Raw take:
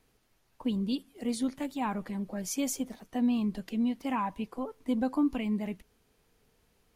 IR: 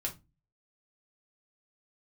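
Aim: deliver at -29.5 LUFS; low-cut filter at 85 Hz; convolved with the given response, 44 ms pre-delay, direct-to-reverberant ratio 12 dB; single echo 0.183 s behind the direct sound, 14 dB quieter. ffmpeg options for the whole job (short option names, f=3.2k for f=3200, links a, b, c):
-filter_complex "[0:a]highpass=85,aecho=1:1:183:0.2,asplit=2[a][b];[1:a]atrim=start_sample=2205,adelay=44[c];[b][c]afir=irnorm=-1:irlink=0,volume=-13.5dB[d];[a][d]amix=inputs=2:normalize=0,volume=2.5dB"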